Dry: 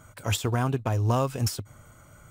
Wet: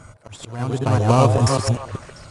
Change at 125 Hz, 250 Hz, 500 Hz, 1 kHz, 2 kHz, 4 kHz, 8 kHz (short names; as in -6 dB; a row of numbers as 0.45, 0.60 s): +8.0, +8.0, +10.0, +9.0, +4.0, +3.5, +4.5 dB